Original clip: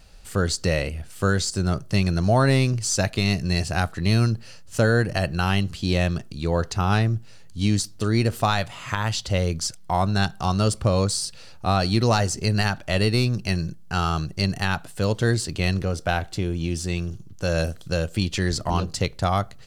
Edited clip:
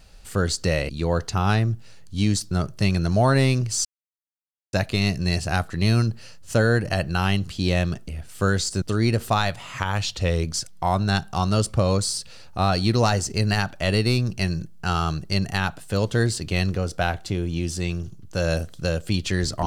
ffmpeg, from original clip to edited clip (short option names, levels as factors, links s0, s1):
-filter_complex "[0:a]asplit=8[s0][s1][s2][s3][s4][s5][s6][s7];[s0]atrim=end=0.892[s8];[s1]atrim=start=6.318:end=7.942[s9];[s2]atrim=start=1.628:end=2.97,asetpts=PTS-STARTPTS,afade=t=out:st=1.338:d=0.004:c=hsin,apad=pad_dur=0.88[s10];[s3]atrim=start=2.97:end=6.322,asetpts=PTS-STARTPTS,afade=t=in:d=0.004:c=hsin[s11];[s4]atrim=start=0.888:end=1.632[s12];[s5]atrim=start=7.938:end=8.914[s13];[s6]atrim=start=8.91:end=9.51,asetpts=PTS-STARTPTS,asetrate=41013,aresample=44100[s14];[s7]atrim=start=9.506[s15];[s8][s9]acrossfade=d=0.004:c1=hsin:c2=hsin[s16];[s10][s11]concat=n=2:v=0:a=1[s17];[s16][s17]acrossfade=d=0.004:c1=hsin:c2=hsin[s18];[s18][s12]acrossfade=d=0.004:c1=hsin:c2=hsin[s19];[s19][s13]acrossfade=d=0.004:c1=hsin:c2=hsin[s20];[s20][s14]acrossfade=d=0.004:c1=hsin:c2=hsin[s21];[s21][s15]acrossfade=d=0.004:c1=hsin:c2=hsin"